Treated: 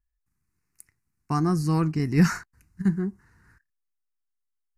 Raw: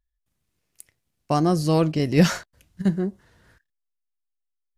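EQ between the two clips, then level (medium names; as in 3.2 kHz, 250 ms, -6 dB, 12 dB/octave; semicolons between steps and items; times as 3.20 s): treble shelf 9.7 kHz -5.5 dB; static phaser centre 1.4 kHz, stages 4; 0.0 dB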